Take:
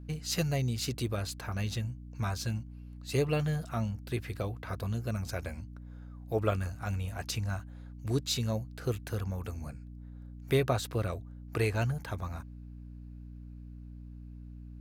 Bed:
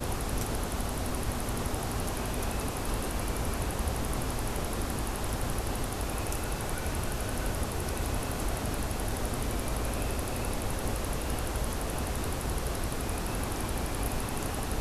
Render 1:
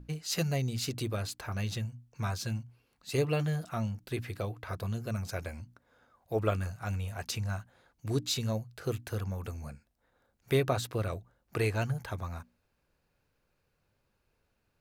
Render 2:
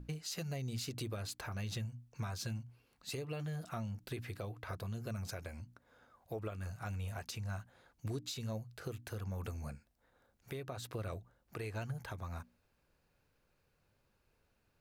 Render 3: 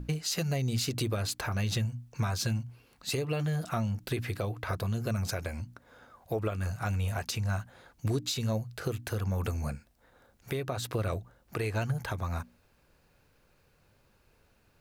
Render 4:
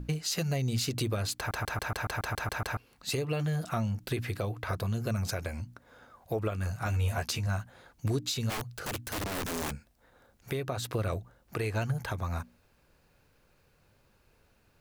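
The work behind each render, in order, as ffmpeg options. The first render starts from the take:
-af "bandreject=f=60:t=h:w=6,bandreject=f=120:t=h:w=6,bandreject=f=180:t=h:w=6,bandreject=f=240:t=h:w=6,bandreject=f=300:t=h:w=6"
-af "acompressor=threshold=0.0224:ratio=6,alimiter=level_in=2.24:limit=0.0631:level=0:latency=1:release=417,volume=0.447"
-af "volume=3.16"
-filter_complex "[0:a]asettb=1/sr,asplit=3[s0][s1][s2];[s0]atrim=end=6.854[s3];[s1]atrim=start=6.85:end=7.47,asetpts=PTS-STARTPTS,afade=t=in:d=0.004:c=qsin,afade=t=out:st=0.616:d=0.004:c=qsin,asplit=2[s4][s5];[s5]adelay=13,volume=0.668[s6];[s4][s6]amix=inputs=2:normalize=0,atrim=end_sample=27342[s7];[s2]atrim=start=7.466[s8];[s3][s7]acrossfade=d=0.004:c1=hsin:c2=qsin[s9];[s9][s8]acrossfade=d=0.004:c1=qsin:c2=hsin,asplit=3[s10][s11][s12];[s10]afade=t=out:st=8.49:d=0.02[s13];[s11]aeval=exprs='(mod(29.9*val(0)+1,2)-1)/29.9':c=same,afade=t=in:st=8.49:d=0.02,afade=t=out:st=9.7:d=0.02[s14];[s12]afade=t=in:st=9.7:d=0.02[s15];[s13][s14][s15]amix=inputs=3:normalize=0,asplit=11[s16][s17][s18][s19][s20][s21][s22][s23][s24][s25][s26];[s16]atrim=end=1.512[s27];[s17]atrim=start=1.368:end=1.512[s28];[s18]atrim=start=1.368:end=1.512[s29];[s19]atrim=start=1.368:end=1.512[s30];[s20]atrim=start=1.368:end=1.512[s31];[s21]atrim=start=1.368:end=1.512[s32];[s22]atrim=start=1.368:end=1.512[s33];[s23]atrim=start=1.368:end=1.512[s34];[s24]atrim=start=1.368:end=1.512[s35];[s25]atrim=start=1.368:end=1.512[s36];[s26]atrim=start=2.768[s37];[s27][s28]acrossfade=d=0.004:c1=hsin:c2=hsin[s38];[s38][s29]acrossfade=d=0.004:c1=hsin:c2=hsin[s39];[s39][s30]acrossfade=d=0.004:c1=hsin:c2=hsin[s40];[s40][s31]acrossfade=d=0.004:c1=hsin:c2=hsin[s41];[s41][s32]acrossfade=d=0.004:c1=hsin:c2=hsin[s42];[s42][s33]acrossfade=d=0.004:c1=hsin:c2=hsin[s43];[s43][s34]acrossfade=d=0.004:c1=hsin:c2=hsin[s44];[s44][s35]acrossfade=d=0.004:c1=hsin:c2=hsin[s45];[s45][s36]acrossfade=d=0.004:c1=hsin:c2=hsin[s46];[s46][s37]acrossfade=d=0.004:c1=hsin:c2=hsin"

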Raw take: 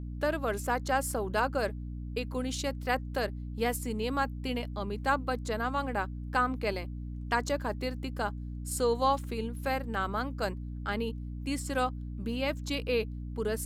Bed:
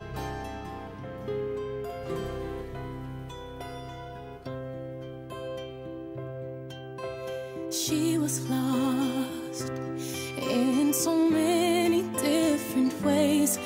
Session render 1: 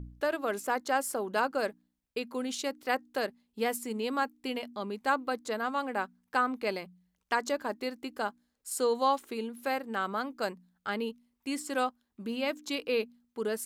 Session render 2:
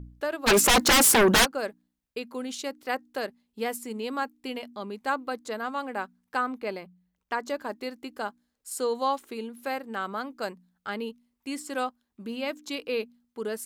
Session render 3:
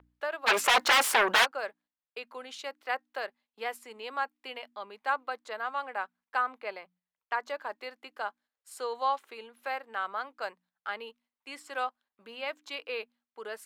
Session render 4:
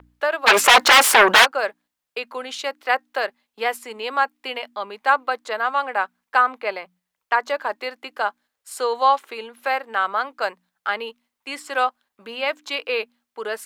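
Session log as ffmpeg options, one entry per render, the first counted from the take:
-af "bandreject=f=60:t=h:w=4,bandreject=f=120:t=h:w=4,bandreject=f=180:t=h:w=4,bandreject=f=240:t=h:w=4,bandreject=f=300:t=h:w=4"
-filter_complex "[0:a]asplit=3[s0][s1][s2];[s0]afade=t=out:st=0.46:d=0.02[s3];[s1]aeval=exprs='0.178*sin(PI/2*8.91*val(0)/0.178)':c=same,afade=t=in:st=0.46:d=0.02,afade=t=out:st=1.44:d=0.02[s4];[s2]afade=t=in:st=1.44:d=0.02[s5];[s3][s4][s5]amix=inputs=3:normalize=0,asettb=1/sr,asplit=3[s6][s7][s8];[s6]atrim=end=6.584[s9];[s7]atrim=start=6.58:end=7.49,asetpts=PTS-STARTPTS,afade=t=in:d=0.004:c=qsin,afade=t=out:st=0.906:d=0.004:c=qsin,equalizer=f=7300:w=0.38:g=-6.5[s10];[s8]atrim=start=7.486[s11];[s9][s10]acrossfade=d=0.004:c1=hsin:c2=qsin[s12];[s12][s11]acrossfade=d=0.004:c1=qsin:c2=hsin"
-filter_complex "[0:a]agate=range=0.447:threshold=0.00178:ratio=16:detection=peak,acrossover=split=550 3800:gain=0.0631 1 0.224[s0][s1][s2];[s0][s1][s2]amix=inputs=3:normalize=0"
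-af "volume=3.98,alimiter=limit=0.794:level=0:latency=1"

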